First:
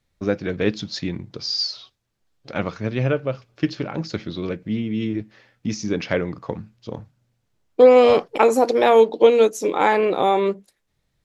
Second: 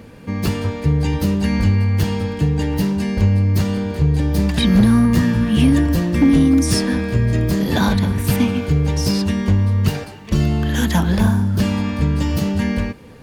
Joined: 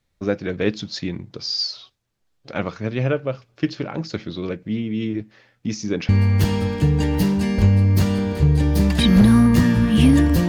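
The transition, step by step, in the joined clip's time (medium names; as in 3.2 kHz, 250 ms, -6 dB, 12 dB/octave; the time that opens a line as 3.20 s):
first
6.09 s: go over to second from 1.68 s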